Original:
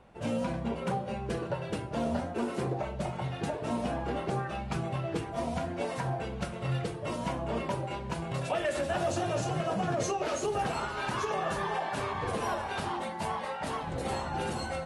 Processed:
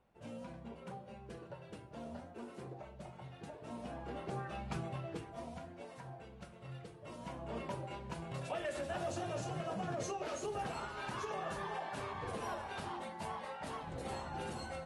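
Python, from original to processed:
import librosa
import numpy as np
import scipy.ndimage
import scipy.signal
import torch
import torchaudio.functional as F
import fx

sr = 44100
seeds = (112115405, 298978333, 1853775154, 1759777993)

y = fx.gain(x, sr, db=fx.line((3.49, -16.0), (4.69, -6.5), (5.85, -17.0), (6.92, -17.0), (7.61, -9.0)))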